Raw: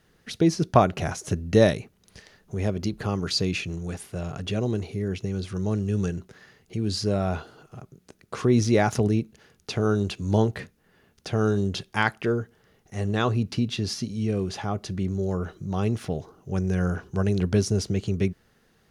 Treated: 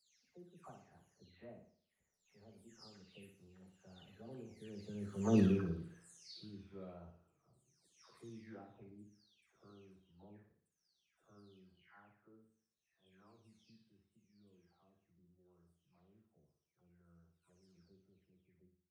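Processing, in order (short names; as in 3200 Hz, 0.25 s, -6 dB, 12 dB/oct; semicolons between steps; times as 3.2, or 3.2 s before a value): spectral delay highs early, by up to 0.554 s; Doppler pass-by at 5.39, 22 m/s, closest 1.3 m; flutter echo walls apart 10 m, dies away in 0.52 s; gain +1.5 dB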